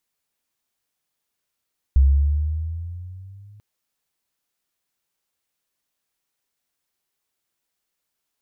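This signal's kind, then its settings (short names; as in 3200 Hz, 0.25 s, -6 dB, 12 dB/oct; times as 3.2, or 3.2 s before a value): gliding synth tone sine, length 1.64 s, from 66.3 Hz, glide +8 st, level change -34 dB, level -9.5 dB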